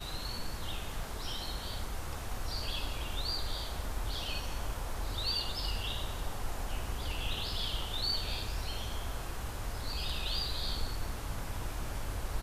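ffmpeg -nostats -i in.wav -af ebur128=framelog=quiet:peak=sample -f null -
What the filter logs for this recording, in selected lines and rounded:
Integrated loudness:
  I:         -37.3 LUFS
  Threshold: -47.3 LUFS
Loudness range:
  LRA:         2.2 LU
  Threshold: -56.9 LUFS
  LRA low:   -38.2 LUFS
  LRA high:  -36.0 LUFS
Sample peak:
  Peak:      -20.9 dBFS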